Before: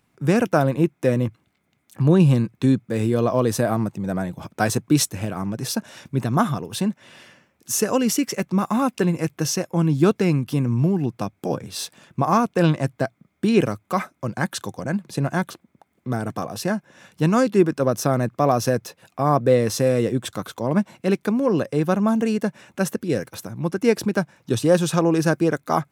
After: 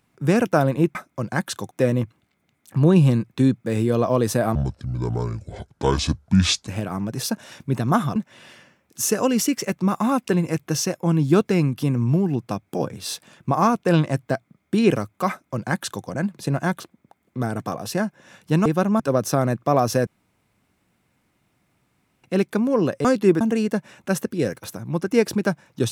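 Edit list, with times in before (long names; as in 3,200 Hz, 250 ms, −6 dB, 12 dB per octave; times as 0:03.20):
0:03.79–0:05.13: play speed 63%
0:06.61–0:06.86: remove
0:14.00–0:14.76: duplicate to 0:00.95
0:17.36–0:17.72: swap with 0:21.77–0:22.11
0:18.79–0:20.96: fill with room tone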